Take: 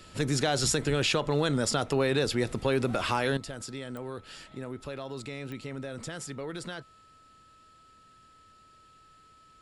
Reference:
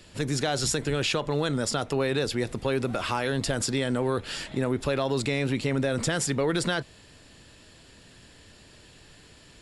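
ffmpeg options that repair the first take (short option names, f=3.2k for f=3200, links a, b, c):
-af "adeclick=t=4,bandreject=f=1.3k:w=30,asetnsamples=n=441:p=0,asendcmd='3.37 volume volume 12dB',volume=0dB"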